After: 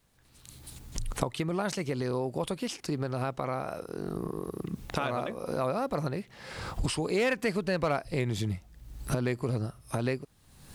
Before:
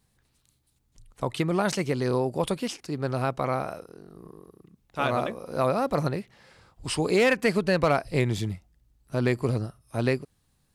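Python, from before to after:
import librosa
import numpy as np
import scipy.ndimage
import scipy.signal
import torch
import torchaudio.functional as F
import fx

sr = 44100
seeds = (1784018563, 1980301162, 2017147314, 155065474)

y = fx.recorder_agc(x, sr, target_db=-17.0, rise_db_per_s=46.0, max_gain_db=30)
y = fx.dmg_noise_colour(y, sr, seeds[0], colour='pink', level_db=-66.0)
y = F.gain(torch.from_numpy(y), -6.0).numpy()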